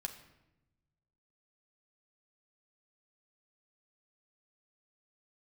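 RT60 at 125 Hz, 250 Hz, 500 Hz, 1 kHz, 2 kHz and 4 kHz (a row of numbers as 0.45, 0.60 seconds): 1.9, 1.4, 1.0, 0.85, 0.80, 0.65 seconds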